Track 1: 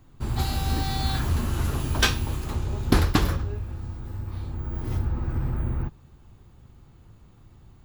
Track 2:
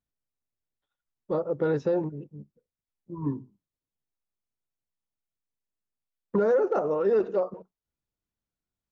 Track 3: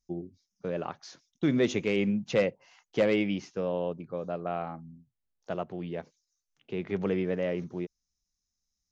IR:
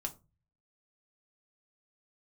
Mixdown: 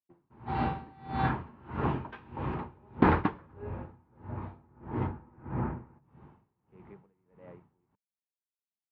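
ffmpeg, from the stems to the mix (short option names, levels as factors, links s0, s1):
-filter_complex "[0:a]adelay=100,volume=1.06,asplit=2[s0][s1];[s1]volume=0.355[s2];[2:a]acompressor=threshold=0.0282:ratio=6,volume=0.158[s3];[3:a]atrim=start_sample=2205[s4];[s2][s4]afir=irnorm=-1:irlink=0[s5];[s0][s3][s5]amix=inputs=3:normalize=0,highpass=130,equalizer=f=200:t=q:w=4:g=5,equalizer=f=440:t=q:w=4:g=3,equalizer=f=920:t=q:w=4:g=9,lowpass=f=2300:w=0.5412,lowpass=f=2300:w=1.3066,aeval=exprs='val(0)*pow(10,-28*(0.5-0.5*cos(2*PI*1.6*n/s))/20)':c=same"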